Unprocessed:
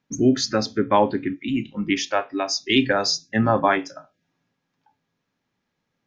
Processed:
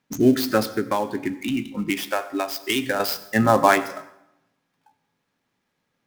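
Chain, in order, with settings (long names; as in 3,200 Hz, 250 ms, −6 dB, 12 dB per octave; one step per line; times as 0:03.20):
gap after every zero crossing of 0.061 ms
low-shelf EQ 270 Hz −5 dB
0:00.60–0:03.00: downward compressor 5 to 1, threshold −24 dBFS, peak gain reduction 10.5 dB
dense smooth reverb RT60 0.84 s, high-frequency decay 0.75×, pre-delay 75 ms, DRR 15.5 dB
level +3.5 dB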